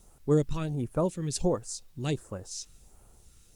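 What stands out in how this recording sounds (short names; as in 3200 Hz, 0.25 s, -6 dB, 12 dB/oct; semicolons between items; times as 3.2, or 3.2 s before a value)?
phasing stages 2, 1.4 Hz, lowest notch 720–3700 Hz; a quantiser's noise floor 12-bit, dither triangular; Opus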